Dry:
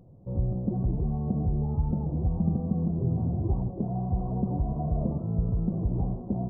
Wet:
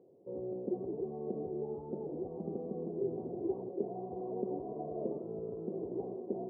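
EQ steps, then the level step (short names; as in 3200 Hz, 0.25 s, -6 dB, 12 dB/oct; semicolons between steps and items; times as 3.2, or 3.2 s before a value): ladder band-pass 440 Hz, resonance 65%; +7.0 dB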